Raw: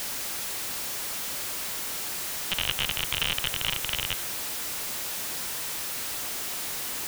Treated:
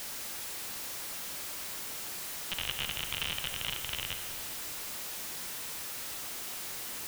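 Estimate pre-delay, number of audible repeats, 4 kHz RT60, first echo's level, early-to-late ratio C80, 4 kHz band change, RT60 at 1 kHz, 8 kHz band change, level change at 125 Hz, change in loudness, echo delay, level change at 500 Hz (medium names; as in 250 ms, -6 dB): 31 ms, no echo, 1.8 s, no echo, 9.0 dB, -7.0 dB, 2.1 s, -7.0 dB, -6.5 dB, -7.0 dB, no echo, -7.0 dB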